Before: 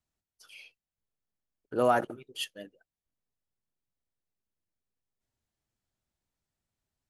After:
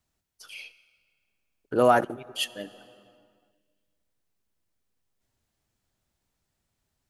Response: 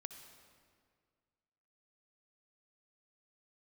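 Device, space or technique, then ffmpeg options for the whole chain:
ducked reverb: -filter_complex "[0:a]asplit=3[a][b][c];[1:a]atrim=start_sample=2205[d];[b][d]afir=irnorm=-1:irlink=0[e];[c]apad=whole_len=313001[f];[e][f]sidechaincompress=threshold=-38dB:ratio=5:attack=16:release=654,volume=0dB[g];[a][g]amix=inputs=2:normalize=0,volume=4.5dB"

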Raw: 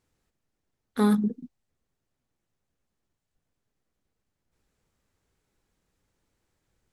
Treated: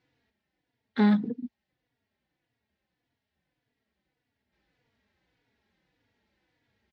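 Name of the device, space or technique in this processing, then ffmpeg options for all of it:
barber-pole flanger into a guitar amplifier: -filter_complex "[0:a]asplit=2[a][b];[b]adelay=3.5,afreqshift=-1.7[c];[a][c]amix=inputs=2:normalize=1,asoftclip=type=tanh:threshold=-22dB,highpass=93,equalizer=f=99:t=q:w=4:g=-5,equalizer=f=160:t=q:w=4:g=-6,equalizer=f=380:t=q:w=4:g=-5,equalizer=f=570:t=q:w=4:g=-3,equalizer=f=1.2k:t=q:w=4:g=-9,equalizer=f=1.9k:t=q:w=4:g=5,lowpass=f=4.4k:w=0.5412,lowpass=f=4.4k:w=1.3066,volume=8dB"

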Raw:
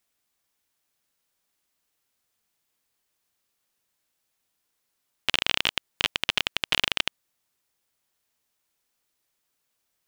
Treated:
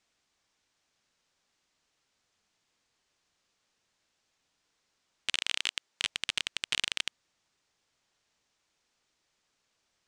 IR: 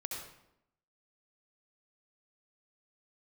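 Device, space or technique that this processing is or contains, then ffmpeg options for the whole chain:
synthesiser wavefolder: -filter_complex "[0:a]aeval=exprs='0.15*(abs(mod(val(0)/0.15+3,4)-2)-1)':c=same,lowpass=f=7.1k:w=0.5412,lowpass=f=7.1k:w=1.3066,asettb=1/sr,asplit=3[a][b][c];[a]atrim=end=5.354[d];[b]atrim=start=5.35:end=6.04,asetpts=PTS-STARTPTS,afade=t=in:d=0.004:c=qsin,afade=t=out:st=0.686:d=0.004:c=qsin,highpass=f=250:p=1[e];[c]atrim=start=6.036[f];[d][e]acrossfade=d=0.004:c1=hsin:c2=qsin[g];[g][f]acrossfade=d=0.004:c1=qsin:c2=hsin,volume=4dB"

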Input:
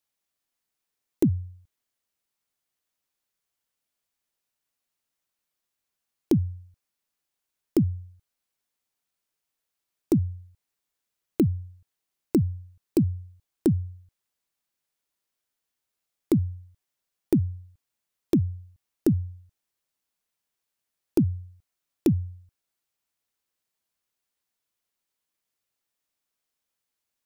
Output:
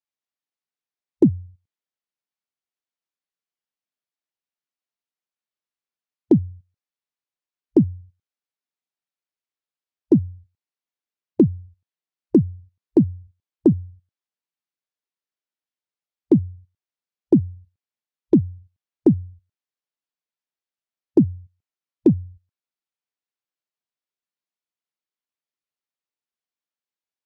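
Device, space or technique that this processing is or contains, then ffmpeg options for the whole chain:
over-cleaned archive recording: -af "highpass=150,lowpass=5.4k,afwtdn=0.0141,volume=7.5dB"

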